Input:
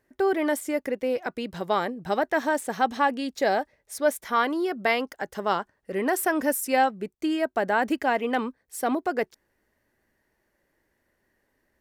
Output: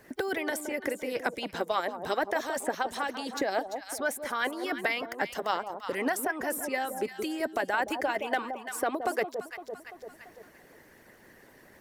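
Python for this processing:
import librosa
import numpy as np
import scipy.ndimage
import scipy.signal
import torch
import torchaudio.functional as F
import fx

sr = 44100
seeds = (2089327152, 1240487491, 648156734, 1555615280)

y = fx.hpss(x, sr, part='harmonic', gain_db=-15)
y = fx.over_compress(y, sr, threshold_db=-25.0, ratio=-0.5)
y = fx.echo_alternate(y, sr, ms=170, hz=910.0, feedback_pct=51, wet_db=-8.0)
y = fx.band_squash(y, sr, depth_pct=70)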